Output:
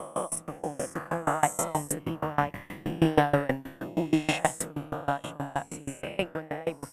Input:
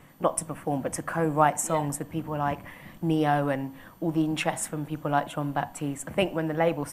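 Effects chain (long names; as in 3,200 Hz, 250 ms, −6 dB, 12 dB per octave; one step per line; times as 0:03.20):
peak hold with a rise ahead of every peak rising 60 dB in 0.91 s
source passing by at 0:03.11, 7 m/s, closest 7.6 metres
tremolo with a ramp in dB decaying 6.3 Hz, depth 25 dB
level +7 dB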